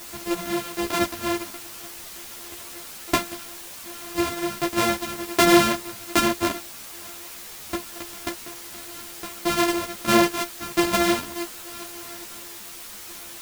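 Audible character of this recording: a buzz of ramps at a fixed pitch in blocks of 128 samples; tremolo saw down 1.3 Hz, depth 100%; a quantiser's noise floor 8-bit, dither triangular; a shimmering, thickened sound

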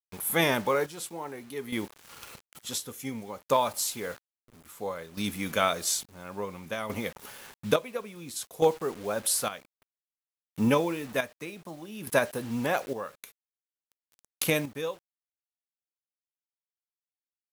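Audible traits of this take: a quantiser's noise floor 8-bit, dither none; chopped level 0.58 Hz, depth 65%, duty 50%

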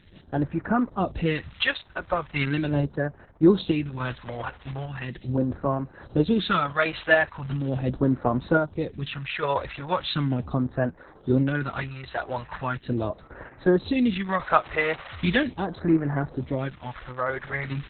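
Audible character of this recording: phasing stages 2, 0.39 Hz, lowest notch 200–3300 Hz; random-step tremolo; Opus

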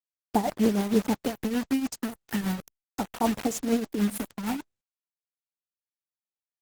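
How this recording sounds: phasing stages 4, 0.38 Hz, lowest notch 460–4800 Hz; a quantiser's noise floor 6-bit, dither none; tremolo triangle 6.5 Hz, depth 75%; Opus

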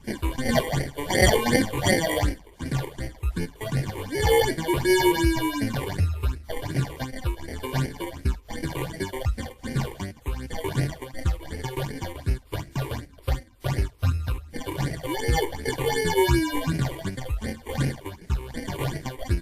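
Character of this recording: aliases and images of a low sample rate 1300 Hz, jitter 0%; phasing stages 8, 2.7 Hz, lowest notch 190–1100 Hz; WMA

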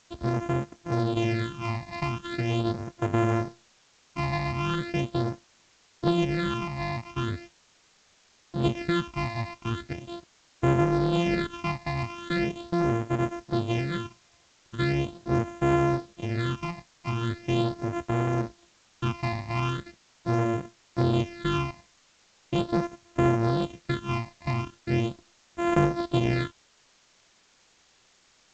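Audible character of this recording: a buzz of ramps at a fixed pitch in blocks of 128 samples; phasing stages 8, 0.4 Hz, lowest notch 420–4300 Hz; a quantiser's noise floor 10-bit, dither triangular; G.722

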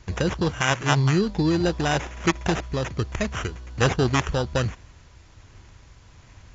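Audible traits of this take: aliases and images of a low sample rate 4400 Hz, jitter 0%; tremolo triangle 1.3 Hz, depth 35%; a quantiser's noise floor 10-bit, dither triangular; MP2

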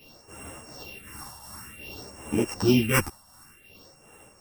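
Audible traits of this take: a buzz of ramps at a fixed pitch in blocks of 16 samples; phasing stages 4, 0.54 Hz, lowest notch 400–4400 Hz; tremolo triangle 2.7 Hz, depth 55%; a shimmering, thickened sound

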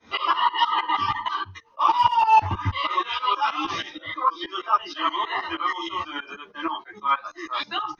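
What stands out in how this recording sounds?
tremolo saw up 6.3 Hz, depth 95%; a shimmering, thickened sound

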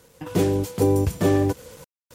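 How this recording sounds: a quantiser's noise floor 8-bit, dither none; random-step tremolo 3.8 Hz, depth 100%; MP3

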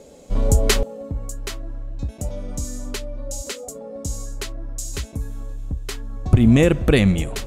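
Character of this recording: noise floor -43 dBFS; spectral tilt -5.5 dB/oct

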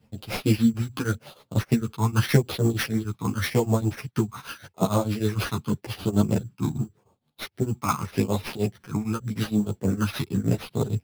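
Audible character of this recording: tremolo triangle 6.5 Hz, depth 95%; phasing stages 12, 0.86 Hz, lowest notch 530–2100 Hz; aliases and images of a low sample rate 7600 Hz, jitter 0%; a shimmering, thickened sound

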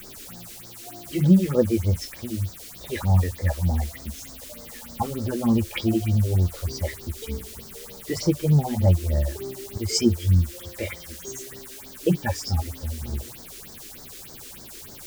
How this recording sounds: a quantiser's noise floor 8-bit, dither triangular; phasing stages 4, 3.3 Hz, lowest notch 130–2700 Hz

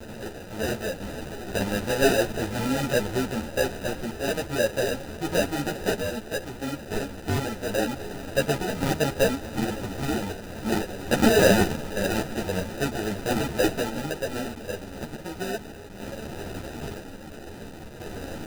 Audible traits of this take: a quantiser's noise floor 6-bit, dither triangular; random-step tremolo 1 Hz; aliases and images of a low sample rate 1100 Hz, jitter 0%; a shimmering, thickened sound

